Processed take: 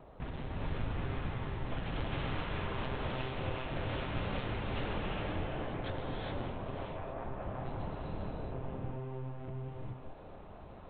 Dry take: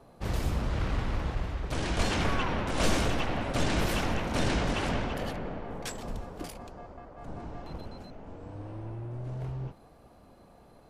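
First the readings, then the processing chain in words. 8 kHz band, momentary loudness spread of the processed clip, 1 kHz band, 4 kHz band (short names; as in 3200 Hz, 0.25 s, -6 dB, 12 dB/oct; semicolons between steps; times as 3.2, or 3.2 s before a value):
under -40 dB, 6 LU, -6.0 dB, -9.0 dB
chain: monotone LPC vocoder at 8 kHz 130 Hz; wow and flutter 26 cents; compressor 6:1, threshold -39 dBFS, peak gain reduction 19 dB; non-linear reverb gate 0.45 s rising, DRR -2.5 dB; gain +1 dB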